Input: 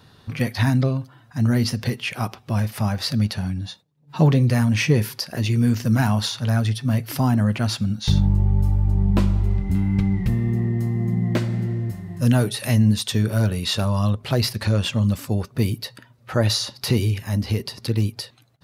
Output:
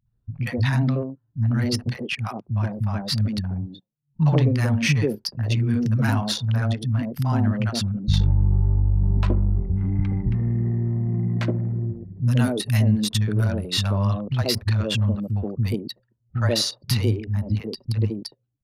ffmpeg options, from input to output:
-filter_complex "[0:a]anlmdn=158,acrossover=split=200|720[a][b][c];[c]adelay=60[d];[b]adelay=130[e];[a][e][d]amix=inputs=3:normalize=0"

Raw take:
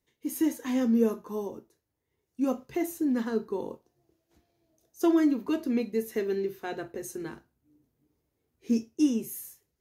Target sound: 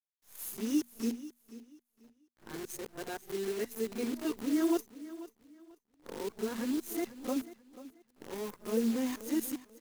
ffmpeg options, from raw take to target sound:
-af "areverse,acrusher=bits=7:dc=4:mix=0:aa=0.000001,bandreject=f=60:t=h:w=6,bandreject=f=120:t=h:w=6,bandreject=f=180:t=h:w=6,bandreject=f=240:t=h:w=6,aecho=1:1:488|976|1464:0.158|0.0412|0.0107,adynamicequalizer=threshold=0.00251:dfrequency=4800:dqfactor=0.7:tfrequency=4800:tqfactor=0.7:attack=5:release=100:ratio=0.375:range=2:mode=boostabove:tftype=highshelf,volume=-6dB"

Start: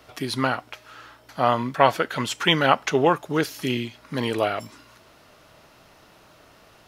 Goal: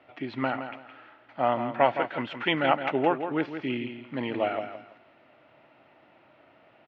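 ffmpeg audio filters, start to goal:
-filter_complex "[0:a]highpass=180,equalizer=f=180:t=q:w=4:g=-8,equalizer=f=440:t=q:w=4:g=-8,equalizer=f=1.1k:t=q:w=4:g=-9,equalizer=f=1.6k:t=q:w=4:g=-6,lowpass=f=2.5k:w=0.5412,lowpass=f=2.5k:w=1.3066,asplit=2[a][b];[b]aecho=0:1:166|332|498:0.355|0.0923|0.024[c];[a][c]amix=inputs=2:normalize=0,volume=-1.5dB"

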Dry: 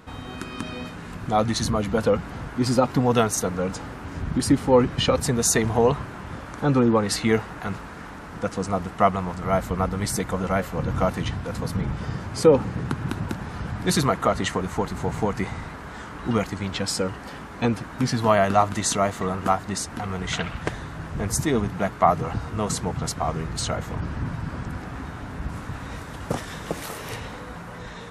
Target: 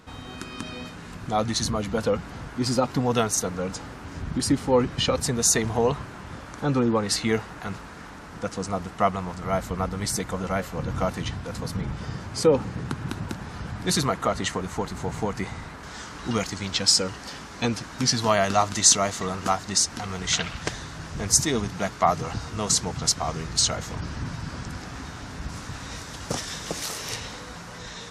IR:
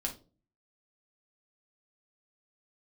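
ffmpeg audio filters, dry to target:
-af "asetnsamples=n=441:p=0,asendcmd='15.83 equalizer g 15',equalizer=f=5.6k:t=o:w=1.6:g=6,volume=-3.5dB"

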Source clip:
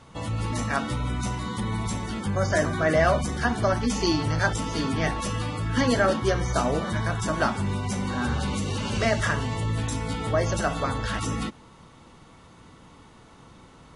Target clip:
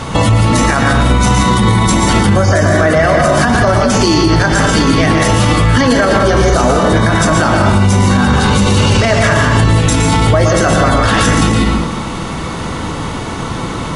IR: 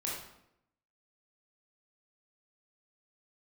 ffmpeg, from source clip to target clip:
-filter_complex "[0:a]asplit=2[a][b];[1:a]atrim=start_sample=2205,adelay=116[c];[b][c]afir=irnorm=-1:irlink=0,volume=-5dB[d];[a][d]amix=inputs=2:normalize=0,acompressor=threshold=-30dB:ratio=6,alimiter=level_in=29dB:limit=-1dB:release=50:level=0:latency=1,volume=-1dB"

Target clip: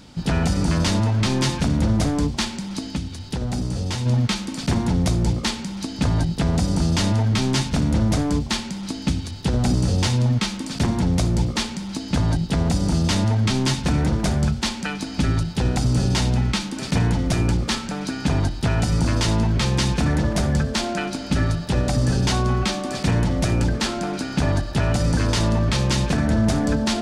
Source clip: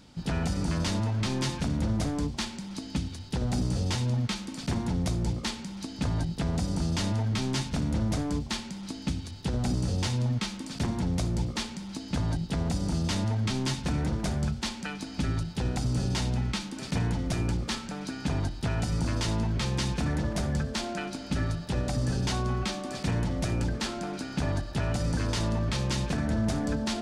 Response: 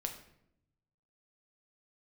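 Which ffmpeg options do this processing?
-filter_complex "[0:a]asplit=3[a][b][c];[a]afade=t=out:st=2.89:d=0.02[d];[b]acompressor=threshold=-40dB:ratio=1.5,afade=t=in:st=2.89:d=0.02,afade=t=out:st=4.05:d=0.02[e];[c]afade=t=in:st=4.05:d=0.02[f];[d][e][f]amix=inputs=3:normalize=0,volume=8.5dB"

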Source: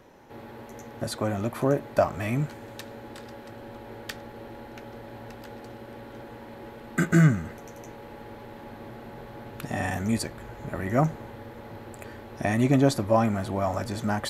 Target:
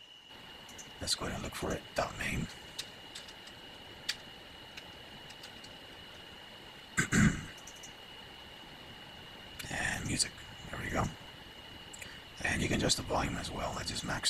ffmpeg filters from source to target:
-af "equalizer=f=250:t=o:w=1:g=-4,equalizer=f=500:t=o:w=1:g=-5,equalizer=f=2k:t=o:w=1:g=6,equalizer=f=4k:t=o:w=1:g=11,equalizer=f=8k:t=o:w=1:g=11,aeval=exprs='val(0)+0.00708*sin(2*PI*2900*n/s)':c=same,afftfilt=real='hypot(re,im)*cos(2*PI*random(0))':imag='hypot(re,im)*sin(2*PI*random(1))':win_size=512:overlap=0.75,volume=-3dB"

